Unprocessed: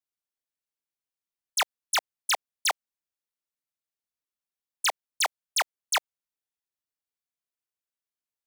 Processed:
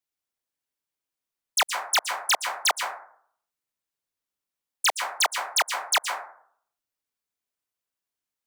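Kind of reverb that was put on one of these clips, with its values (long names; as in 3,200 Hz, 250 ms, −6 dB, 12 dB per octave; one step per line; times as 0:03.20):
dense smooth reverb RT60 0.6 s, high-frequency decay 0.35×, pre-delay 110 ms, DRR 4.5 dB
level +3 dB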